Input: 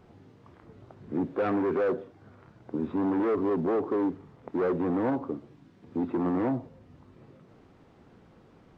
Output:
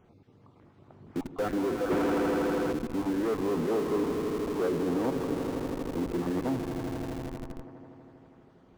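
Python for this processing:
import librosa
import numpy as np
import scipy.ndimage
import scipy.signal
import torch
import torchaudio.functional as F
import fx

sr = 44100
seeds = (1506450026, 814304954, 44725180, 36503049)

p1 = fx.spec_dropout(x, sr, seeds[0], share_pct=28)
p2 = fx.echo_swell(p1, sr, ms=81, loudest=5, wet_db=-11.5)
p3 = fx.leveller(p2, sr, passes=3, at=(1.9, 2.73))
p4 = fx.schmitt(p3, sr, flips_db=-32.5)
p5 = p3 + (p4 * 10.0 ** (-6.0 / 20.0))
y = p5 * 10.0 ** (-4.5 / 20.0)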